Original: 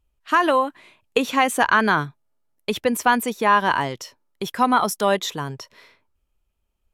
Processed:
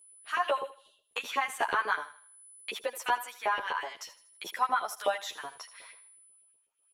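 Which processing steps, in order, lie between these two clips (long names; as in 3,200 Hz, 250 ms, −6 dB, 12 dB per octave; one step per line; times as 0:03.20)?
time-frequency box erased 0:00.63–0:01.08, 640–2,700 Hz
in parallel at −2 dB: output level in coarse steps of 18 dB
on the sum: steady tone 10,000 Hz −49 dBFS
auto-filter high-pass saw up 8.1 Hz 440–2,900 Hz
downward compressor 1.5 to 1, threshold −38 dBFS, peak gain reduction 12 dB
on a send: feedback echo with a high-pass in the loop 79 ms, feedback 39%, high-pass 490 Hz, level −14 dB
on the sum: barber-pole flanger 10.8 ms +0.35 Hz
level −4 dB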